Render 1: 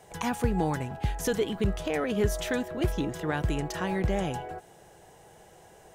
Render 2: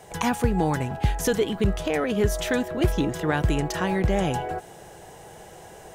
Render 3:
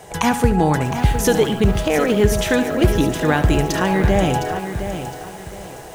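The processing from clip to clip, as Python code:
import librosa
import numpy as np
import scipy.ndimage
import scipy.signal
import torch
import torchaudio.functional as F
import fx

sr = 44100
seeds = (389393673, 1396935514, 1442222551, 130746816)

y1 = fx.rider(x, sr, range_db=10, speed_s=0.5)
y1 = y1 * librosa.db_to_amplitude(5.0)
y2 = fx.echo_feedback(y1, sr, ms=72, feedback_pct=36, wet_db=-12.0)
y2 = fx.echo_crushed(y2, sr, ms=712, feedback_pct=35, bits=7, wet_db=-9.0)
y2 = y2 * librosa.db_to_amplitude(6.5)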